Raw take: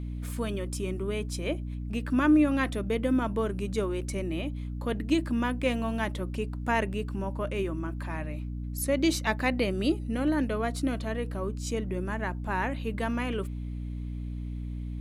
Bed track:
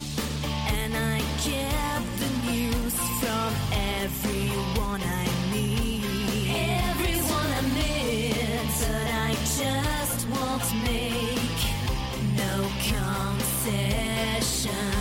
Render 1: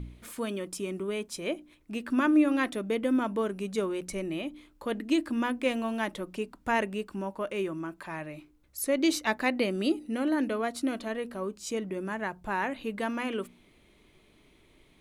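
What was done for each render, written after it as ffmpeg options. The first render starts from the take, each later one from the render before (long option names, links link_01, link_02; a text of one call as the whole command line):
ffmpeg -i in.wav -af "bandreject=frequency=60:width_type=h:width=4,bandreject=frequency=120:width_type=h:width=4,bandreject=frequency=180:width_type=h:width=4,bandreject=frequency=240:width_type=h:width=4,bandreject=frequency=300:width_type=h:width=4" out.wav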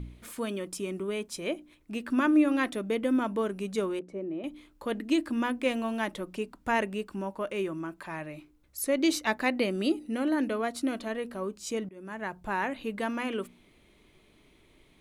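ffmpeg -i in.wav -filter_complex "[0:a]asettb=1/sr,asplit=3[link_01][link_02][link_03];[link_01]atrim=end=3.994[link_04];[link_02]atrim=start=3.99:end=4.44,asetpts=PTS-STARTPTS,afade=type=in:duration=0.004:curve=qsin,afade=type=out:start_time=0.446:duration=0.004:curve=qsin,bandpass=frequency=380:width_type=q:width=1.1[link_05];[link_03]atrim=start=4.436[link_06];[link_04][link_05]acrossfade=duration=0.004:curve1=hsin:curve2=qsin[link_07];[link_07][link_06]acrossfade=duration=0.004:curve1=qsin:curve2=hsin,asplit=2[link_08][link_09];[link_08]atrim=end=11.89,asetpts=PTS-STARTPTS,afade=type=out:start_time=11.886:duration=0.004:curve=hsin:silence=0.0891251[link_10];[link_09]atrim=start=11.89,asetpts=PTS-STARTPTS,afade=type=in:duration=0.47:silence=0.0891251[link_11];[link_10][link_11]concat=n=2:v=0:a=1" out.wav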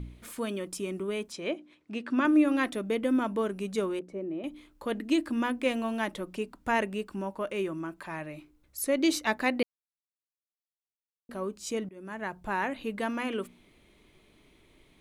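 ffmpeg -i in.wav -filter_complex "[0:a]asettb=1/sr,asplit=3[link_01][link_02][link_03];[link_01]atrim=end=1.324[link_04];[link_02]atrim=start=1.32:end=2.25,asetpts=PTS-STARTPTS,afade=type=in:duration=0.004:curve=qsin,afade=type=out:start_time=0.926:duration=0.004:curve=qsin,highpass=160,lowpass=5600[link_05];[link_03]atrim=start=2.246[link_06];[link_04][link_05]acrossfade=duration=0.004:curve1=hsin:curve2=qsin[link_07];[link_07][link_06]acrossfade=duration=0.004:curve1=qsin:curve2=hsin,asplit=3[link_08][link_09][link_10];[link_08]atrim=end=9.63,asetpts=PTS-STARTPTS,afade=type=out:start_time=9.626:duration=0.004:curve=hsin[link_11];[link_09]atrim=start=9.63:end=11.29,asetpts=PTS-STARTPTS,volume=0[link_12];[link_10]atrim=start=11.29,asetpts=PTS-STARTPTS,afade=type=in:duration=0.004:curve=hsin[link_13];[link_11][link_12][link_13]concat=n=3:v=0:a=1" out.wav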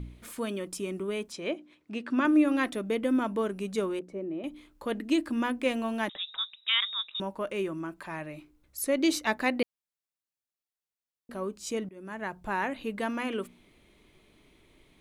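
ffmpeg -i in.wav -filter_complex "[0:a]asettb=1/sr,asplit=3[link_01][link_02][link_03];[link_01]atrim=end=6.094[link_04];[link_02]atrim=start=6.09:end=7.2,asetpts=PTS-STARTPTS,afade=type=in:duration=0.004:curve=qsin,afade=type=out:start_time=1.106:duration=0.004:curve=qsin,lowpass=frequency=3300:width_type=q:width=0.5098,lowpass=frequency=3300:width_type=q:width=0.6013,lowpass=frequency=3300:width_type=q:width=0.9,lowpass=frequency=3300:width_type=q:width=2.563,afreqshift=-3900[link_05];[link_03]atrim=start=7.196[link_06];[link_04][link_05]acrossfade=duration=0.004:curve1=hsin:curve2=qsin[link_07];[link_07][link_06]acrossfade=duration=0.004:curve1=qsin:curve2=hsin" out.wav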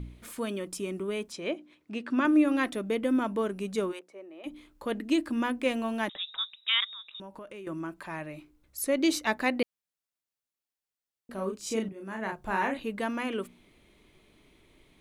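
ffmpeg -i in.wav -filter_complex "[0:a]asplit=3[link_01][link_02][link_03];[link_01]afade=type=out:start_time=3.91:duration=0.02[link_04];[link_02]highpass=720,afade=type=in:start_time=3.91:duration=0.02,afade=type=out:start_time=4.45:duration=0.02[link_05];[link_03]afade=type=in:start_time=4.45:duration=0.02[link_06];[link_04][link_05][link_06]amix=inputs=3:normalize=0,asettb=1/sr,asplit=3[link_07][link_08][link_09];[link_07]atrim=end=6.844[link_10];[link_08]atrim=start=6.84:end=7.67,asetpts=PTS-STARTPTS,afade=type=in:duration=0.004:curve=qsin,afade=type=out:start_time=0.826:duration=0.004:curve=qsin,acompressor=threshold=-41dB:ratio=6:attack=3.2:release=140:knee=1:detection=peak[link_11];[link_09]atrim=start=7.666[link_12];[link_10][link_11]acrossfade=duration=0.004:curve1=hsin:curve2=qsin[link_13];[link_13][link_12]acrossfade=duration=0.004:curve1=qsin:curve2=hsin,asettb=1/sr,asplit=3[link_14][link_15][link_16];[link_14]atrim=end=11.344[link_17];[link_15]atrim=start=11.34:end=12.8,asetpts=PTS-STARTPTS,afade=type=in:duration=0.004:curve=qsin,afade=type=out:start_time=1.456:duration=0.004:curve=qsin,asplit=2[link_18][link_19];[link_19]adelay=36,volume=-3dB[link_20];[link_18][link_20]amix=inputs=2:normalize=0,atrim=end_sample=64386[link_21];[link_16]atrim=start=12.796[link_22];[link_17][link_21]acrossfade=duration=0.004:curve1=hsin:curve2=qsin[link_23];[link_23][link_22]acrossfade=duration=0.004:curve1=qsin:curve2=hsin" out.wav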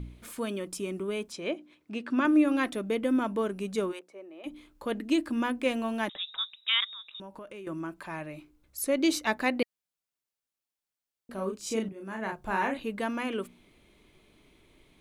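ffmpeg -i in.wav -af "bandreject=frequency=1900:width=27" out.wav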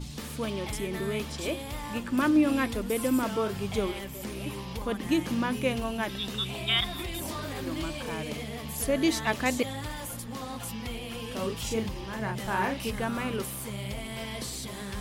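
ffmpeg -i in.wav -i bed.wav -filter_complex "[1:a]volume=-10dB[link_01];[0:a][link_01]amix=inputs=2:normalize=0" out.wav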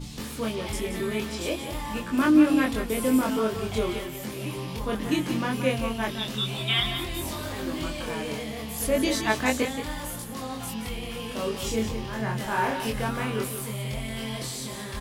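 ffmpeg -i in.wav -filter_complex "[0:a]asplit=2[link_01][link_02];[link_02]adelay=23,volume=-2dB[link_03];[link_01][link_03]amix=inputs=2:normalize=0,aecho=1:1:175:0.355" out.wav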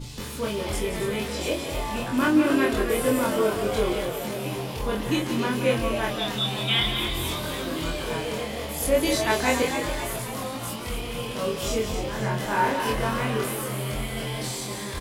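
ffmpeg -i in.wav -filter_complex "[0:a]asplit=2[link_01][link_02];[link_02]adelay=25,volume=-3.5dB[link_03];[link_01][link_03]amix=inputs=2:normalize=0,asplit=8[link_04][link_05][link_06][link_07][link_08][link_09][link_10][link_11];[link_05]adelay=269,afreqshift=86,volume=-8.5dB[link_12];[link_06]adelay=538,afreqshift=172,volume=-13.1dB[link_13];[link_07]adelay=807,afreqshift=258,volume=-17.7dB[link_14];[link_08]adelay=1076,afreqshift=344,volume=-22.2dB[link_15];[link_09]adelay=1345,afreqshift=430,volume=-26.8dB[link_16];[link_10]adelay=1614,afreqshift=516,volume=-31.4dB[link_17];[link_11]adelay=1883,afreqshift=602,volume=-36dB[link_18];[link_04][link_12][link_13][link_14][link_15][link_16][link_17][link_18]amix=inputs=8:normalize=0" out.wav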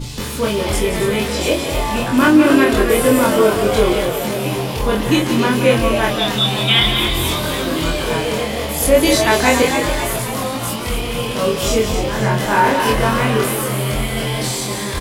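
ffmpeg -i in.wav -af "volume=10dB,alimiter=limit=-2dB:level=0:latency=1" out.wav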